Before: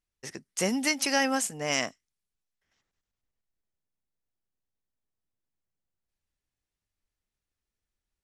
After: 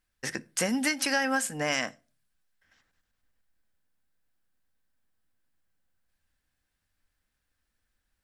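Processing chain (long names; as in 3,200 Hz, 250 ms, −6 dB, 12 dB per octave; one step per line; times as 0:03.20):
thirty-one-band graphic EQ 400 Hz −5 dB, 1,600 Hz +9 dB, 6,300 Hz −4 dB
downward compressor 3 to 1, threshold −35 dBFS, peak gain reduction 12.5 dB
on a send: convolution reverb RT60 0.35 s, pre-delay 4 ms, DRR 13 dB
on the sum: level +7.5 dB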